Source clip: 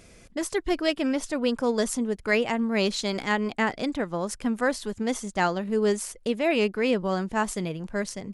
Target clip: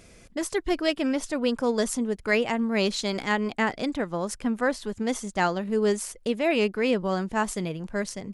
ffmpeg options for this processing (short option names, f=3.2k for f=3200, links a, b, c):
-filter_complex "[0:a]asettb=1/sr,asplit=3[a][b][c];[a]atrim=end=4.414[d];[b]atrim=start=4.41:end=4.92,asetpts=PTS-STARTPTS,afade=t=in:d=0.004:c=qsin,afade=t=out:st=0.506:d=0.004:c=qsin,highshelf=f=5.1k:g=-6[e];[c]atrim=start=4.916[f];[d][e]acrossfade=d=0.004:c1=hsin:c2=qsin[g];[g][f]acrossfade=d=0.004:c1=qsin:c2=hsin"